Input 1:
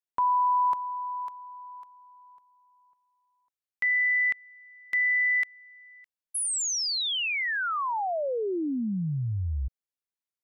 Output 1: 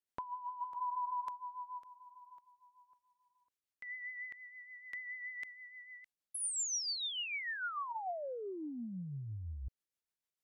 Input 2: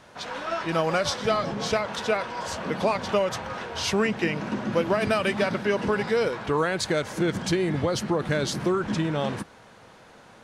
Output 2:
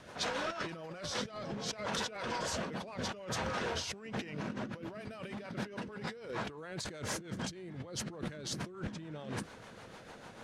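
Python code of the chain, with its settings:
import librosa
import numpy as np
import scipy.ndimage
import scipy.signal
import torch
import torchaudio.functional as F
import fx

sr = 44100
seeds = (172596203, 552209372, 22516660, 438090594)

y = fx.rotary(x, sr, hz=6.7)
y = fx.over_compress(y, sr, threshold_db=-37.0, ratio=-1.0)
y = fx.dynamic_eq(y, sr, hz=6700.0, q=0.86, threshold_db=-48.0, ratio=4.0, max_db=4)
y = F.gain(torch.from_numpy(y), -5.0).numpy()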